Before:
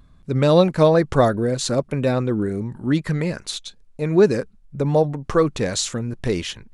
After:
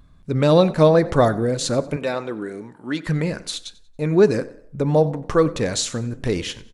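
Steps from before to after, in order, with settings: 1.96–3.07 weighting filter A; frequency-shifting echo 93 ms, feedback 35%, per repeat +31 Hz, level -20 dB; reverb RT60 0.70 s, pre-delay 3 ms, DRR 15.5 dB

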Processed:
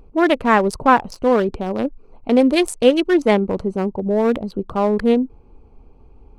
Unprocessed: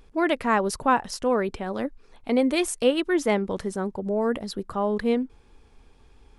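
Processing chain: Wiener smoothing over 25 samples; gain +8 dB

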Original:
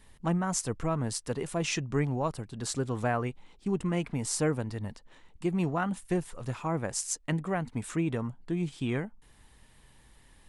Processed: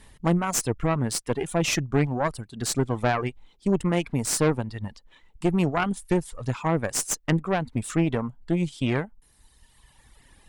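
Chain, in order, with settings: reverb removal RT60 1.6 s; added harmonics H 4 -9 dB, 5 -12 dB, 8 -23 dB, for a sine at -12.5 dBFS

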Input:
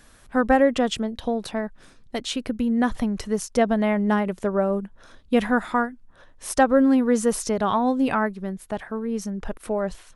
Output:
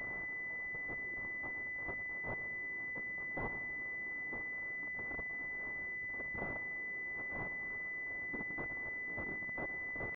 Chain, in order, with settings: infinite clipping; limiter -33 dBFS, peak gain reduction 19.5 dB; sample leveller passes 3; bell 550 Hz -14.5 dB 1 oct; whisperiser; spring tank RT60 3 s, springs 44/52/56 ms, chirp 65 ms, DRR 5 dB; pitch shift +4.5 st; gate -29 dBFS, range -29 dB; tilt +3 dB/oct; thinning echo 0.117 s, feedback 46%, level -16 dB; pulse-width modulation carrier 2000 Hz; gain +9 dB

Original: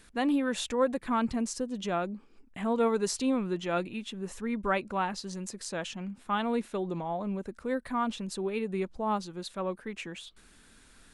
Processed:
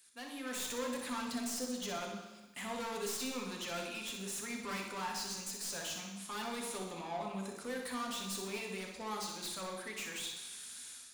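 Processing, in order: self-modulated delay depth 0.081 ms; HPF 59 Hz; pre-emphasis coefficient 0.97; AGC gain up to 16 dB; soft clip -38.5 dBFS, distortion -1 dB; flutter echo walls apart 10.6 m, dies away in 0.53 s; on a send at -1.5 dB: reverb RT60 1.1 s, pre-delay 3 ms; on the sum: gain -2 dB

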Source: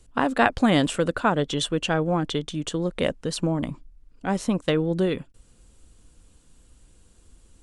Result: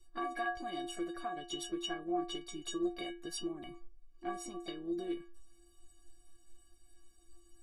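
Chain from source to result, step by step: compressor 12:1, threshold -26 dBFS, peak gain reduction 14 dB; harmoniser +4 st -11 dB; metallic resonator 340 Hz, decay 0.42 s, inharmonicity 0.03; gain +8.5 dB

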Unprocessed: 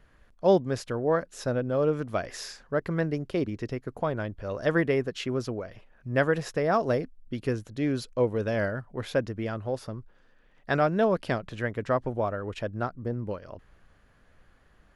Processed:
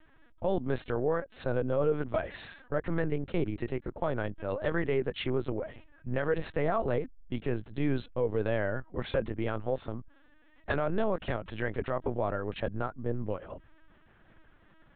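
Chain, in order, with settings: LPC vocoder at 8 kHz pitch kept; limiter -18 dBFS, peak gain reduction 10.5 dB

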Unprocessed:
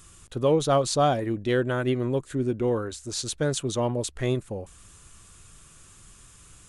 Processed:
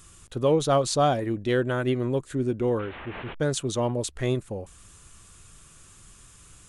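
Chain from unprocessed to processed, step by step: 2.79–3.4 delta modulation 16 kbps, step -33.5 dBFS

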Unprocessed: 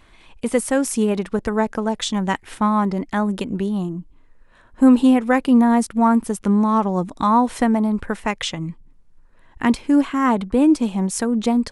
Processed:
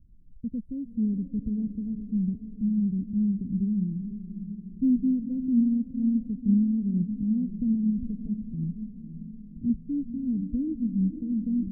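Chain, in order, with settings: inverse Chebyshev low-pass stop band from 920 Hz, stop band 70 dB; diffused feedback echo 0.514 s, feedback 59%, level -10.5 dB; gain -1.5 dB

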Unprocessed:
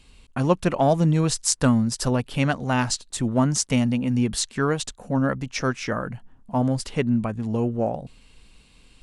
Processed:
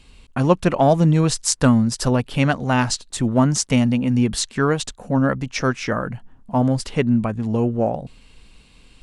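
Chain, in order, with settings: high shelf 7000 Hz -4.5 dB; gain +4 dB

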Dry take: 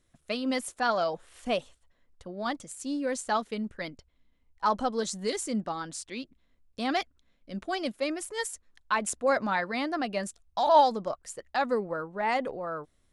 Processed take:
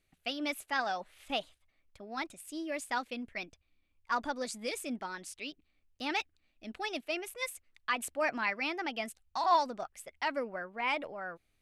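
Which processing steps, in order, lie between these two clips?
bell 2300 Hz +9.5 dB 1 oct; varispeed +13%; gain -7.5 dB

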